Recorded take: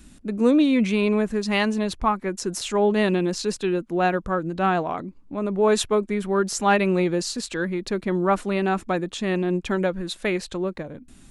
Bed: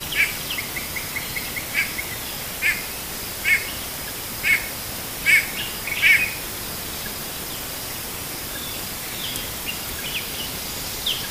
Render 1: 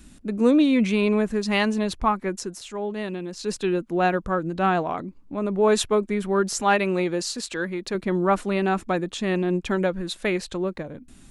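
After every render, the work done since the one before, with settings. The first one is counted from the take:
0:02.35–0:03.55: duck −9.5 dB, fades 0.19 s
0:06.62–0:07.95: low-shelf EQ 230 Hz −7.5 dB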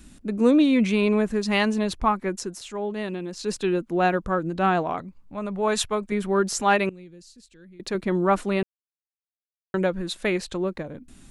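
0:04.99–0:06.12: parametric band 320 Hz −14.5 dB
0:06.89–0:07.80: guitar amp tone stack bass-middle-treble 10-0-1
0:08.63–0:09.74: silence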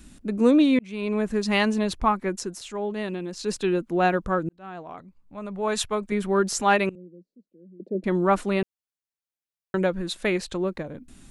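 0:00.79–0:01.37: fade in
0:04.49–0:06.10: fade in
0:06.95–0:08.04: elliptic band-pass filter 180–580 Hz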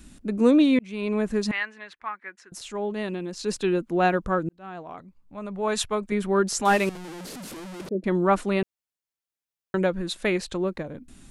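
0:01.51–0:02.52: resonant band-pass 1,800 Hz, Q 3
0:06.65–0:07.89: linear delta modulator 64 kbit/s, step −32 dBFS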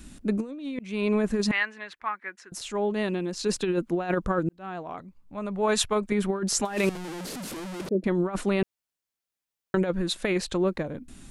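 compressor whose output falls as the input rises −24 dBFS, ratio −0.5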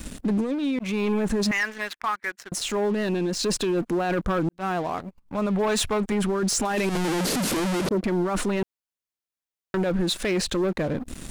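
leveller curve on the samples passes 3
brickwall limiter −19 dBFS, peak gain reduction 9 dB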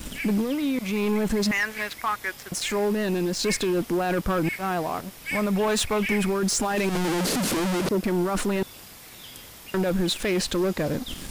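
mix in bed −15 dB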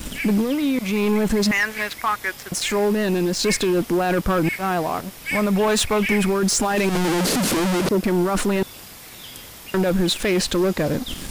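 level +4.5 dB

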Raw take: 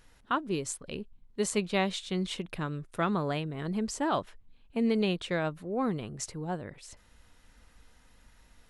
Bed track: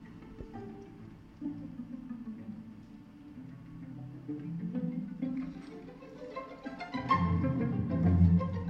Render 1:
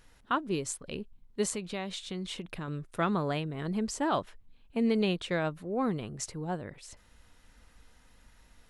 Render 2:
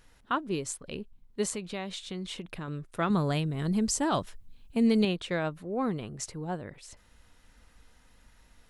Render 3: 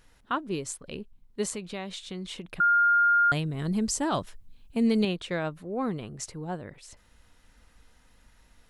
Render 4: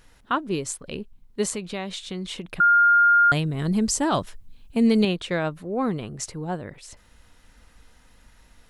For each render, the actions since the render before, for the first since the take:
0:01.54–0:02.68: downward compressor 2.5 to 1, threshold −35 dBFS
0:03.10–0:05.05: bass and treble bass +7 dB, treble +10 dB
0:02.60–0:03.32: beep over 1,410 Hz −18 dBFS
level +5 dB

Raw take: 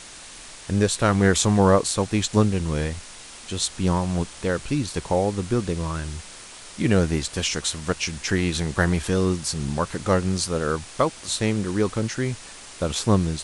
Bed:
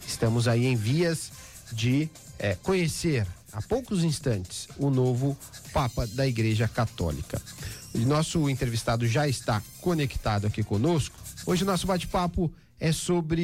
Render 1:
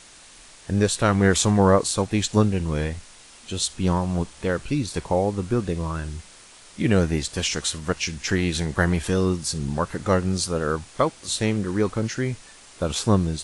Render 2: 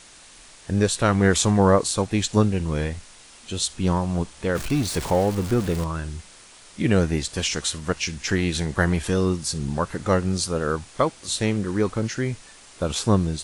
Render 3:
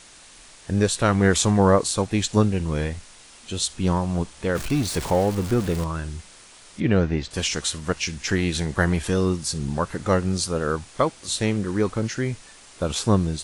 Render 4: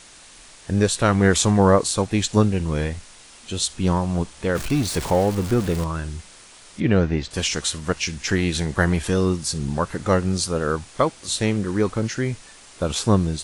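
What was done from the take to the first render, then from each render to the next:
noise reduction from a noise print 6 dB
0:04.55–0:05.84: converter with a step at zero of −28 dBFS
0:06.80–0:07.31: high-frequency loss of the air 170 metres
level +1.5 dB

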